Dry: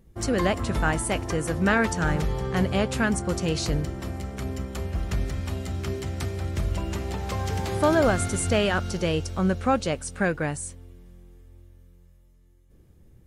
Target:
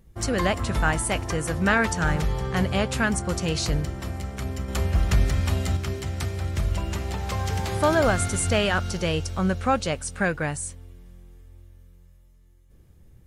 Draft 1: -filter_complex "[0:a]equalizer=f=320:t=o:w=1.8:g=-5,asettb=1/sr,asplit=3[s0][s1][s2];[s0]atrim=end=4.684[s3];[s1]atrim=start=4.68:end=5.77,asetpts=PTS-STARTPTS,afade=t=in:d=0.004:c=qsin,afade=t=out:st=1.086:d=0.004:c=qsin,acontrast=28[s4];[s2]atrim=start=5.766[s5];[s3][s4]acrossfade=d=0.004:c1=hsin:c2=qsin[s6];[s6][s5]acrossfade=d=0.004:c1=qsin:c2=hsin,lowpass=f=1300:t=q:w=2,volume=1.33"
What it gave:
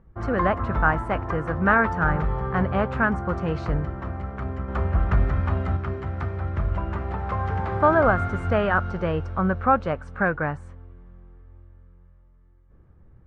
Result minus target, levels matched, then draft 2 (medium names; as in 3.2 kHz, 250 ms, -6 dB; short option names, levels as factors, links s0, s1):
1 kHz band +3.5 dB
-filter_complex "[0:a]equalizer=f=320:t=o:w=1.8:g=-5,asettb=1/sr,asplit=3[s0][s1][s2];[s0]atrim=end=4.684[s3];[s1]atrim=start=4.68:end=5.77,asetpts=PTS-STARTPTS,afade=t=in:d=0.004:c=qsin,afade=t=out:st=1.086:d=0.004:c=qsin,acontrast=28[s4];[s2]atrim=start=5.766[s5];[s3][s4]acrossfade=d=0.004:c1=hsin:c2=qsin[s6];[s6][s5]acrossfade=d=0.004:c1=qsin:c2=hsin,volume=1.33"